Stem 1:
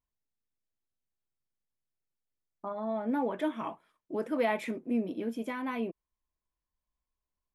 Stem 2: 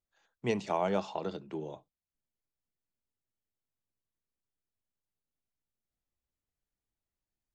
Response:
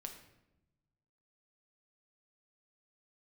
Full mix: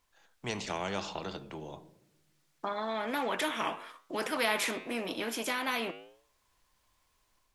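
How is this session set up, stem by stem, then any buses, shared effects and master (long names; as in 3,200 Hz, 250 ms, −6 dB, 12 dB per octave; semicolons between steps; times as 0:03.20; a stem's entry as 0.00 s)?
+3.0 dB, 0.00 s, no send, meter weighting curve A
−9.5 dB, 0.00 s, send −15 dB, low-shelf EQ 130 Hz +8 dB; automatic ducking −12 dB, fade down 1.70 s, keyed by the first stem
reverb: on, RT60 0.90 s, pre-delay 6 ms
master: automatic gain control gain up to 3.5 dB; flanger 0.96 Hz, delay 7.7 ms, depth 3 ms, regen −89%; every bin compressed towards the loudest bin 2 to 1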